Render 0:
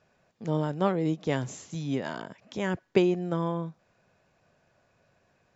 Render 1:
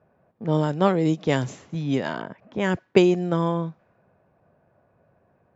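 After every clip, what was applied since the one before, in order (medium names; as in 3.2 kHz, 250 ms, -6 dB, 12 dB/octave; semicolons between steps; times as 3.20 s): high-pass 50 Hz; level-controlled noise filter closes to 1 kHz, open at -21.5 dBFS; treble shelf 6.6 kHz +9 dB; trim +6 dB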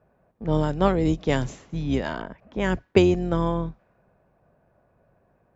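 octave divider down 2 oct, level -6 dB; trim -1 dB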